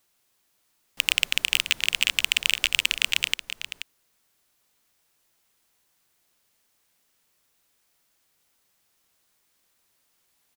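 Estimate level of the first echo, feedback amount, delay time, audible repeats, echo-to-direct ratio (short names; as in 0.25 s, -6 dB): -10.5 dB, no steady repeat, 0.481 s, 1, -10.5 dB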